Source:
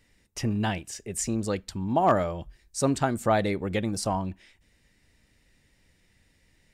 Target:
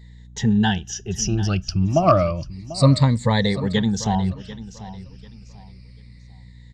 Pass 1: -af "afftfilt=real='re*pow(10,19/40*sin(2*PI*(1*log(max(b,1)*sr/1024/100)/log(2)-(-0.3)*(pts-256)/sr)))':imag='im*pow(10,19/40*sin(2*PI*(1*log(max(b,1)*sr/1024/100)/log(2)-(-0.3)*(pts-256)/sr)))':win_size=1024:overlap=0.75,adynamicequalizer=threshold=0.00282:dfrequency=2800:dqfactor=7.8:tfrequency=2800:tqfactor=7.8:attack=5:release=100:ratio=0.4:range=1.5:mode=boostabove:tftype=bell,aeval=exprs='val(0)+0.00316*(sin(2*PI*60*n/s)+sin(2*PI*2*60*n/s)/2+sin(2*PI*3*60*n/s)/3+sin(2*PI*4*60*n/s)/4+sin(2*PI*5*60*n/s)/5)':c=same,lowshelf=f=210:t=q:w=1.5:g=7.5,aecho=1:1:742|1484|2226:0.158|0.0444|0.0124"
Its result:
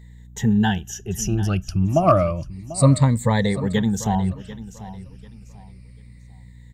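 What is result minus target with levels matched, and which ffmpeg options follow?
4 kHz band -5.5 dB
-af "afftfilt=real='re*pow(10,19/40*sin(2*PI*(1*log(max(b,1)*sr/1024/100)/log(2)-(-0.3)*(pts-256)/sr)))':imag='im*pow(10,19/40*sin(2*PI*(1*log(max(b,1)*sr/1024/100)/log(2)-(-0.3)*(pts-256)/sr)))':win_size=1024:overlap=0.75,adynamicequalizer=threshold=0.00282:dfrequency=2800:dqfactor=7.8:tfrequency=2800:tqfactor=7.8:attack=5:release=100:ratio=0.4:range=1.5:mode=boostabove:tftype=bell,lowpass=f=4900:t=q:w=3.1,aeval=exprs='val(0)+0.00316*(sin(2*PI*60*n/s)+sin(2*PI*2*60*n/s)/2+sin(2*PI*3*60*n/s)/3+sin(2*PI*4*60*n/s)/4+sin(2*PI*5*60*n/s)/5)':c=same,lowshelf=f=210:t=q:w=1.5:g=7.5,aecho=1:1:742|1484|2226:0.158|0.0444|0.0124"

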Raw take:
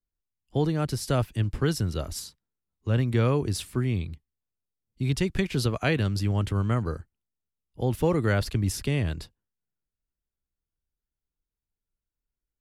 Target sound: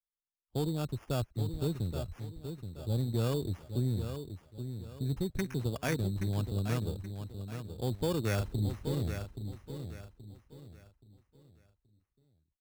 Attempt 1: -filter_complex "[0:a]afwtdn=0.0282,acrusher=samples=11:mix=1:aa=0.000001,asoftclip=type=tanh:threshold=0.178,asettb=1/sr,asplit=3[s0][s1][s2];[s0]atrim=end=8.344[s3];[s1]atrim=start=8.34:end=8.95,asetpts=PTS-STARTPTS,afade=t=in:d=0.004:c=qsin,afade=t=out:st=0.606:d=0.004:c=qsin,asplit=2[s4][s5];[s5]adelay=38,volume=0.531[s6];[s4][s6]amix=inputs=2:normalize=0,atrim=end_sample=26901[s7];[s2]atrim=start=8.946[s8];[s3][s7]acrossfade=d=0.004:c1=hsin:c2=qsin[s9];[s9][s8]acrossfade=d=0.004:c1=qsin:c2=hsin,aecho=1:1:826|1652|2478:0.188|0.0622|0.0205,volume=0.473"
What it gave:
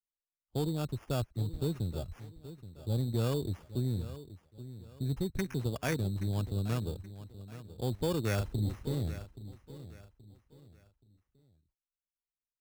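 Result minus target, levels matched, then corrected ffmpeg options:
echo-to-direct -6 dB
-filter_complex "[0:a]afwtdn=0.0282,acrusher=samples=11:mix=1:aa=0.000001,asoftclip=type=tanh:threshold=0.178,asettb=1/sr,asplit=3[s0][s1][s2];[s0]atrim=end=8.344[s3];[s1]atrim=start=8.34:end=8.95,asetpts=PTS-STARTPTS,afade=t=in:d=0.004:c=qsin,afade=t=out:st=0.606:d=0.004:c=qsin,asplit=2[s4][s5];[s5]adelay=38,volume=0.531[s6];[s4][s6]amix=inputs=2:normalize=0,atrim=end_sample=26901[s7];[s2]atrim=start=8.946[s8];[s3][s7]acrossfade=d=0.004:c1=hsin:c2=qsin[s9];[s9][s8]acrossfade=d=0.004:c1=qsin:c2=hsin,aecho=1:1:826|1652|2478|3304:0.376|0.124|0.0409|0.0135,volume=0.473"

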